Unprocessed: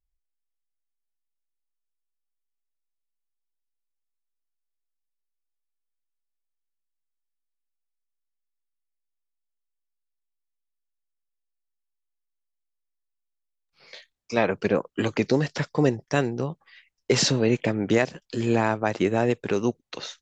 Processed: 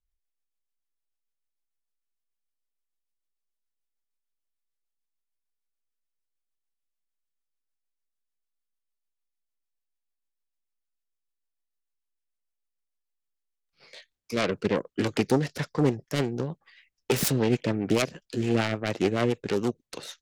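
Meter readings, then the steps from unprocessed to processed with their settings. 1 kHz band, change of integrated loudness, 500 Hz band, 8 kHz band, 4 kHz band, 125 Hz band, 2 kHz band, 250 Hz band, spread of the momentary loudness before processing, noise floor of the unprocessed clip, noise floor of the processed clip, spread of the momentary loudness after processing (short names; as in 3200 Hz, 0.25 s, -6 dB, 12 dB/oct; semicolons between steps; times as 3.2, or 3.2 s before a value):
-4.5 dB, -2.5 dB, -3.5 dB, -3.0 dB, -3.5 dB, -1.5 dB, -4.0 dB, -2.0 dB, 7 LU, -81 dBFS, -83 dBFS, 8 LU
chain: self-modulated delay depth 0.42 ms; rotary speaker horn 6.7 Hz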